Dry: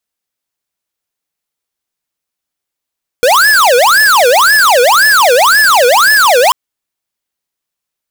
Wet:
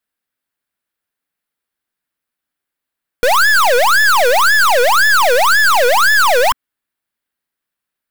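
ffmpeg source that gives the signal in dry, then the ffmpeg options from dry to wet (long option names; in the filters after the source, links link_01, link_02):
-f lavfi -i "aevalsrc='0.447*(2*lt(mod((1109*t-631/(2*PI*1.9)*sin(2*PI*1.9*t)),1),0.5)-1)':duration=3.29:sample_rate=44100"
-af "equalizer=frequency=250:width_type=o:width=0.67:gain=5,equalizer=frequency=1600:width_type=o:width=0.67:gain=7,equalizer=frequency=6300:width_type=o:width=0.67:gain=-8,aeval=exprs='(tanh(3.16*val(0)+0.5)-tanh(0.5))/3.16':channel_layout=same"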